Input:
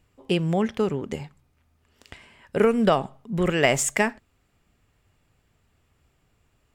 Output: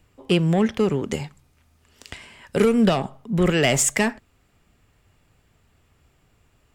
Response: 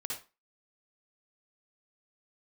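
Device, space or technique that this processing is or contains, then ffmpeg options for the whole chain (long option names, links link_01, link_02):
one-band saturation: -filter_complex "[0:a]acrossover=split=340|2500[link_01][link_02][link_03];[link_02]asoftclip=type=tanh:threshold=-25dB[link_04];[link_01][link_04][link_03]amix=inputs=3:normalize=0,asettb=1/sr,asplit=3[link_05][link_06][link_07];[link_05]atrim=end=0.914[link_08];[link_06]atrim=start=0.91:end=2.69,asetpts=PTS-STARTPTS,afade=type=in:duration=0.004:curve=qsin,afade=type=out:start_time=1.776:duration=0.004:curve=qsin,equalizer=frequency=7800:width=0.41:gain=6[link_09];[link_07]atrim=start=2.686[link_10];[link_08][link_09]acrossfade=duration=0.004:curve1=hsin:curve2=qsin[link_11];[link_11][link_10]acrossfade=duration=0.004:curve1=qsin:curve2=hsin,volume=5dB"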